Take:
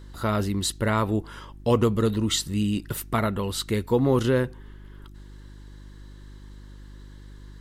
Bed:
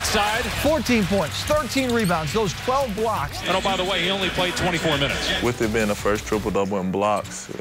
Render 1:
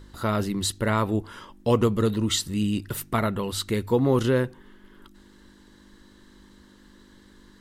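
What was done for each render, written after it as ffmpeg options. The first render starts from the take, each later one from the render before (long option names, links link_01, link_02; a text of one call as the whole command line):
ffmpeg -i in.wav -af "bandreject=frequency=50:width_type=h:width=4,bandreject=frequency=100:width_type=h:width=4,bandreject=frequency=150:width_type=h:width=4" out.wav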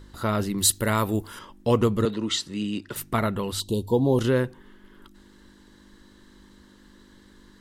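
ffmpeg -i in.wav -filter_complex "[0:a]asettb=1/sr,asplit=3[link_01][link_02][link_03];[link_01]atrim=end=0.584[link_04];[link_02]atrim=start=0.58:end=1.39,asetpts=PTS-STARTPTS,afade=type=in:duration=0.004:curve=qsin,afade=type=out:start_time=0.806:duration=0.004:curve=qsin,aemphasis=mode=production:type=50fm[link_05];[link_03]atrim=start=1.386[link_06];[link_04][link_05]acrossfade=duration=0.004:curve1=hsin:curve2=qsin[link_07];[link_07][link_06]acrossfade=duration=0.004:curve1=qsin:curve2=hsin,asettb=1/sr,asplit=3[link_08][link_09][link_10];[link_08]atrim=end=2.054[link_11];[link_09]atrim=start=2.05:end=2.96,asetpts=PTS-STARTPTS,afade=type=in:duration=0.004:curve=qsin,afade=type=out:start_time=0.906:duration=0.004:curve=qsin,acrossover=split=200 7500:gain=0.2 1 0.1[link_12][link_13][link_14];[link_12][link_13][link_14]amix=inputs=3:normalize=0[link_15];[link_10]atrim=start=2.956[link_16];[link_11][link_15]acrossfade=duration=0.004:curve1=hsin:curve2=qsin[link_17];[link_17][link_16]acrossfade=duration=0.004:curve1=qsin:curve2=hsin,asettb=1/sr,asplit=3[link_18][link_19][link_20];[link_18]atrim=end=3.604[link_21];[link_19]atrim=start=3.6:end=4.19,asetpts=PTS-STARTPTS,afade=type=in:duration=0.004:curve=qsin,afade=type=out:start_time=0.586:duration=0.004:curve=qsin,asuperstop=centerf=1700:order=12:qfactor=0.87[link_22];[link_20]atrim=start=4.186[link_23];[link_21][link_22]acrossfade=duration=0.004:curve1=hsin:curve2=qsin[link_24];[link_24][link_23]acrossfade=duration=0.004:curve1=qsin:curve2=hsin" out.wav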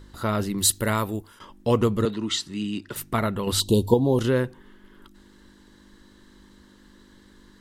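ffmpeg -i in.wav -filter_complex "[0:a]asettb=1/sr,asplit=3[link_01][link_02][link_03];[link_01]atrim=end=2.124[link_04];[link_02]atrim=start=2.12:end=2.82,asetpts=PTS-STARTPTS,afade=type=in:duration=0.004:curve=qsin,afade=type=out:start_time=0.696:duration=0.004:curve=qsin,equalizer=frequency=510:width=5.6:gain=-13.5[link_05];[link_03]atrim=start=2.816[link_06];[link_04][link_05]acrossfade=duration=0.004:curve1=hsin:curve2=qsin[link_07];[link_07][link_06]acrossfade=duration=0.004:curve1=qsin:curve2=hsin,asplit=4[link_08][link_09][link_10][link_11];[link_08]atrim=end=1.4,asetpts=PTS-STARTPTS,afade=type=out:start_time=0.9:duration=0.5:silence=0.188365[link_12];[link_09]atrim=start=1.4:end=3.472,asetpts=PTS-STARTPTS,afade=type=in:duration=0.004:curve=hsin:silence=0.188365[link_13];[link_10]atrim=start=3.468:end=3.942,asetpts=PTS-STARTPTS,volume=6.5dB[link_14];[link_11]atrim=start=3.938[link_15];[link_12][link_13]concat=n=2:v=0:a=1[link_16];[link_16][link_14]acrossfade=duration=0.004:curve1=hsin:curve2=hsin[link_17];[link_17][link_15]acrossfade=duration=0.004:curve1=hsin:curve2=hsin" out.wav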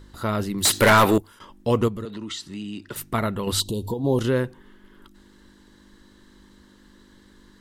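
ffmpeg -i in.wav -filter_complex "[0:a]asettb=1/sr,asplit=3[link_01][link_02][link_03];[link_01]atrim=end=0.654[link_04];[link_02]atrim=start=0.65:end=1.18,asetpts=PTS-STARTPTS,afade=type=in:duration=0.004:curve=qsin,afade=type=out:start_time=0.526:duration=0.004:curve=qsin,asplit=2[link_05][link_06];[link_06]highpass=frequency=720:poles=1,volume=29dB,asoftclip=type=tanh:threshold=-5.5dB[link_07];[link_05][link_07]amix=inputs=2:normalize=0,lowpass=frequency=3500:poles=1,volume=-6dB[link_08];[link_03]atrim=start=1.176[link_09];[link_04][link_08]acrossfade=duration=0.004:curve1=hsin:curve2=qsin[link_10];[link_10][link_09]acrossfade=duration=0.004:curve1=qsin:curve2=hsin,asettb=1/sr,asplit=3[link_11][link_12][link_13];[link_11]atrim=end=1.884[link_14];[link_12]atrim=start=1.88:end=2.82,asetpts=PTS-STARTPTS,afade=type=in:duration=0.004:curve=qsin,afade=type=out:start_time=0.936:duration=0.004:curve=qsin,acompressor=threshold=-30dB:ratio=4:attack=3.2:release=140:knee=1:detection=peak[link_15];[link_13]atrim=start=2.816[link_16];[link_14][link_15]acrossfade=duration=0.004:curve1=hsin:curve2=qsin[link_17];[link_17][link_16]acrossfade=duration=0.004:curve1=qsin:curve2=hsin,asplit=3[link_18][link_19][link_20];[link_18]afade=type=out:start_time=3.62:duration=0.02[link_21];[link_19]acompressor=threshold=-26dB:ratio=3:attack=3.2:release=140:knee=1:detection=peak,afade=type=in:start_time=3.62:duration=0.02,afade=type=out:start_time=4.03:duration=0.02[link_22];[link_20]afade=type=in:start_time=4.03:duration=0.02[link_23];[link_21][link_22][link_23]amix=inputs=3:normalize=0" out.wav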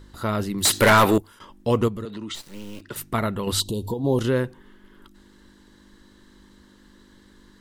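ffmpeg -i in.wav -filter_complex "[0:a]asplit=3[link_01][link_02][link_03];[link_01]afade=type=out:start_time=2.34:duration=0.02[link_04];[link_02]acrusher=bits=5:dc=4:mix=0:aa=0.000001,afade=type=in:start_time=2.34:duration=0.02,afade=type=out:start_time=2.8:duration=0.02[link_05];[link_03]afade=type=in:start_time=2.8:duration=0.02[link_06];[link_04][link_05][link_06]amix=inputs=3:normalize=0" out.wav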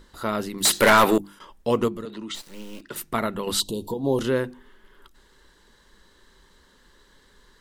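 ffmpeg -i in.wav -af "equalizer=frequency=96:width_type=o:width=0.71:gain=-13.5,bandreject=frequency=50:width_type=h:width=6,bandreject=frequency=100:width_type=h:width=6,bandreject=frequency=150:width_type=h:width=6,bandreject=frequency=200:width_type=h:width=6,bandreject=frequency=250:width_type=h:width=6,bandreject=frequency=300:width_type=h:width=6,bandreject=frequency=350:width_type=h:width=6" out.wav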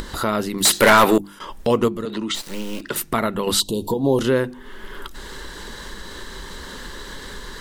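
ffmpeg -i in.wav -filter_complex "[0:a]asplit=2[link_01][link_02];[link_02]alimiter=limit=-18dB:level=0:latency=1:release=342,volume=2dB[link_03];[link_01][link_03]amix=inputs=2:normalize=0,acompressor=mode=upward:threshold=-20dB:ratio=2.5" out.wav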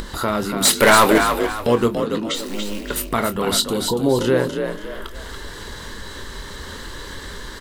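ffmpeg -i in.wav -filter_complex "[0:a]asplit=2[link_01][link_02];[link_02]adelay=25,volume=-11dB[link_03];[link_01][link_03]amix=inputs=2:normalize=0,asplit=5[link_04][link_05][link_06][link_07][link_08];[link_05]adelay=284,afreqshift=44,volume=-6.5dB[link_09];[link_06]adelay=568,afreqshift=88,volume=-15.9dB[link_10];[link_07]adelay=852,afreqshift=132,volume=-25.2dB[link_11];[link_08]adelay=1136,afreqshift=176,volume=-34.6dB[link_12];[link_04][link_09][link_10][link_11][link_12]amix=inputs=5:normalize=0" out.wav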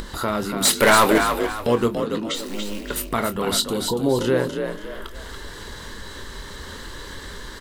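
ffmpeg -i in.wav -af "volume=-2.5dB" out.wav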